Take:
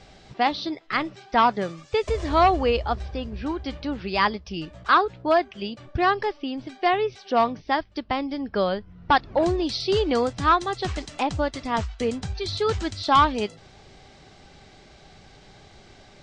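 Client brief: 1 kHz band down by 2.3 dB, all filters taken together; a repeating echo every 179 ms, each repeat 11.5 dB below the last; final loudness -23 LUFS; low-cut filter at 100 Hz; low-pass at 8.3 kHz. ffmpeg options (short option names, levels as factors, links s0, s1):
-af "highpass=100,lowpass=8300,equalizer=f=1000:t=o:g=-3,aecho=1:1:179|358|537:0.266|0.0718|0.0194,volume=1.33"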